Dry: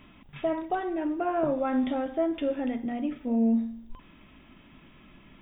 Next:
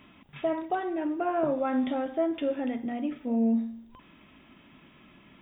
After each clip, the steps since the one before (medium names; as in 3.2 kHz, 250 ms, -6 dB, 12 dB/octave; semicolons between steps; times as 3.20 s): high-pass 130 Hz 6 dB/octave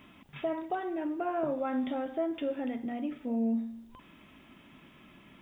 in parallel at 0 dB: compression, threshold -36 dBFS, peak gain reduction 13 dB; on the sum: word length cut 12-bit, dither triangular; trim -6.5 dB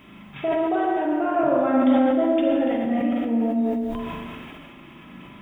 tape echo 75 ms, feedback 62%, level -4 dB, low-pass 1.1 kHz; spring tank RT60 1.6 s, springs 38/43 ms, chirp 70 ms, DRR -2 dB; decay stretcher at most 22 dB/s; trim +5.5 dB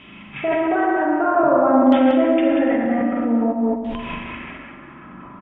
LFO low-pass saw down 0.52 Hz 930–3100 Hz; delay 187 ms -7.5 dB; trim +2 dB